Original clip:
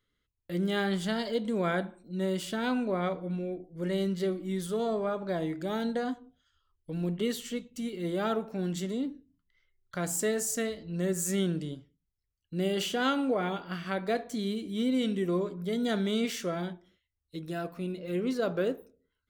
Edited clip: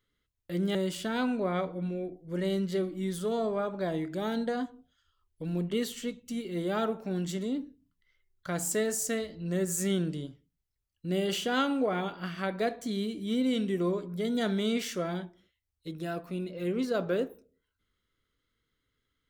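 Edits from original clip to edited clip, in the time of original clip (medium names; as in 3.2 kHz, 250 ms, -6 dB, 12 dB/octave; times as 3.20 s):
0.75–2.23 s: delete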